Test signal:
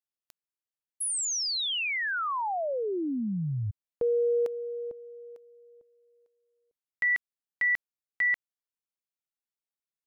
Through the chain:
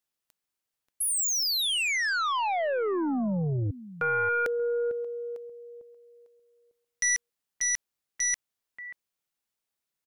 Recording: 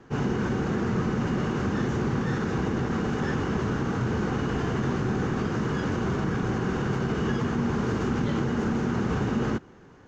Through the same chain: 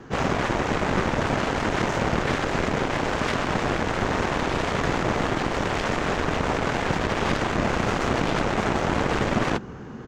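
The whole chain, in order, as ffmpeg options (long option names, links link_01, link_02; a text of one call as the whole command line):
ffmpeg -i in.wav -filter_complex "[0:a]asplit=2[link_01][link_02];[link_02]adelay=583.1,volume=-21dB,highshelf=frequency=4000:gain=-13.1[link_03];[link_01][link_03]amix=inputs=2:normalize=0,aeval=exprs='0.178*(cos(1*acos(clip(val(0)/0.178,-1,1)))-cos(1*PI/2))+0.0224*(cos(2*acos(clip(val(0)/0.178,-1,1)))-cos(2*PI/2))+0.00126*(cos(4*acos(clip(val(0)/0.178,-1,1)))-cos(4*PI/2))+0.0891*(cos(7*acos(clip(val(0)/0.178,-1,1)))-cos(7*PI/2))':channel_layout=same" out.wav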